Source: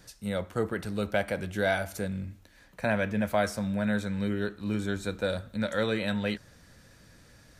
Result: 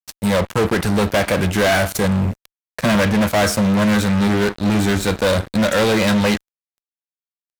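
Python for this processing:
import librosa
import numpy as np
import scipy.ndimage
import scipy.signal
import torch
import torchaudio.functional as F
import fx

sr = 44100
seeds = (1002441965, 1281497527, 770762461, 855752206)

y = fx.dynamic_eq(x, sr, hz=180.0, q=0.8, threshold_db=-43.0, ratio=4.0, max_db=5, at=(2.24, 3.0), fade=0.02)
y = fx.fuzz(y, sr, gain_db=35.0, gate_db=-44.0)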